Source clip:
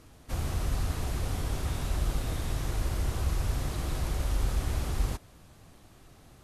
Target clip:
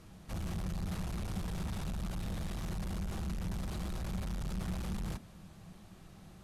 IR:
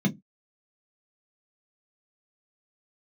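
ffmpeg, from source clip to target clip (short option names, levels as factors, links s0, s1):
-filter_complex "[0:a]highshelf=f=6300:g=-4,asoftclip=type=tanh:threshold=0.0188,asplit=2[s0][s1];[1:a]atrim=start_sample=2205,lowpass=3500[s2];[s1][s2]afir=irnorm=-1:irlink=0,volume=0.0841[s3];[s0][s3]amix=inputs=2:normalize=0,volume=0.891"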